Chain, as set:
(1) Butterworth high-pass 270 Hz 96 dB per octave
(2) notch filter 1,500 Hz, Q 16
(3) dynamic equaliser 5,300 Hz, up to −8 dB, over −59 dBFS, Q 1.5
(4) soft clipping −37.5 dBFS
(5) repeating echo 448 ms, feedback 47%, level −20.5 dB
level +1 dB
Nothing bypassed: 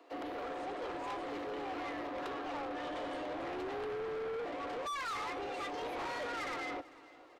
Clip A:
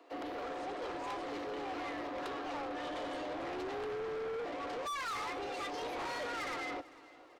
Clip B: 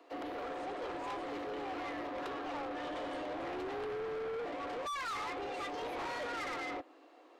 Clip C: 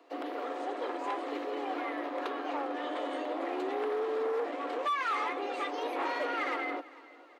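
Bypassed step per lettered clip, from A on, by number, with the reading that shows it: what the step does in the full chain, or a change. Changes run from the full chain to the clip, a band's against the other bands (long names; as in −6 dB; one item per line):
3, 8 kHz band +2.5 dB
5, echo-to-direct ratio −19.5 dB to none audible
4, distortion level −9 dB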